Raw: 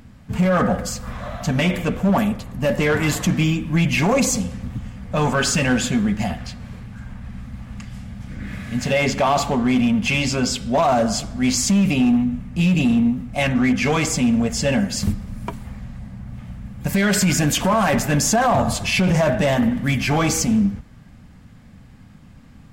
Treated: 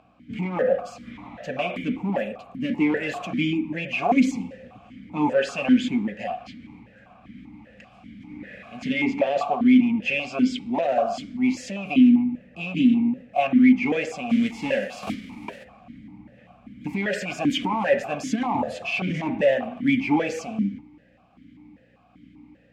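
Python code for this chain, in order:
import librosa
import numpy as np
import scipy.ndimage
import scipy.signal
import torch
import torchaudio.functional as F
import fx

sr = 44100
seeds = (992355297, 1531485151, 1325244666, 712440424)

y = fx.envelope_flatten(x, sr, power=0.6, at=(14.29, 15.63), fade=0.02)
y = fx.add_hum(y, sr, base_hz=60, snr_db=22)
y = fx.vowel_held(y, sr, hz=5.1)
y = y * librosa.db_to_amplitude(7.0)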